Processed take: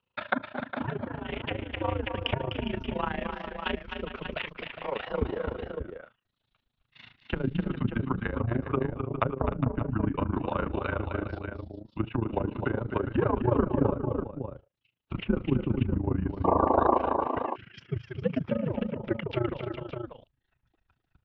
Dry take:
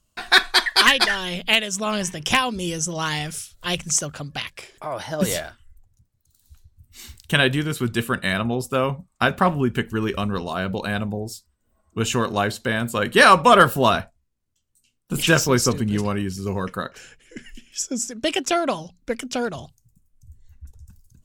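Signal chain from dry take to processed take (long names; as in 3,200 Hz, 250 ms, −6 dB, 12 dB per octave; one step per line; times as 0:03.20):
treble cut that deepens with the level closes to 430 Hz, closed at −17 dBFS
sound drawn into the spectrogram noise, 0:16.44–0:16.98, 350–1,300 Hz −20 dBFS
single-sideband voice off tune −120 Hz 210–3,500 Hz
on a send: multi-tap delay 252/306/410/578 ms −7/−15.5/−11.5/−8 dB
on the sum: amplitude modulation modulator 27 Hz, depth 75%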